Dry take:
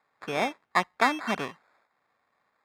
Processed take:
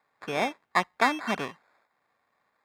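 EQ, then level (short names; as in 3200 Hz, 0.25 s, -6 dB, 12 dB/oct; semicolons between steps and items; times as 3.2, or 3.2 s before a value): notch 1300 Hz, Q 21; 0.0 dB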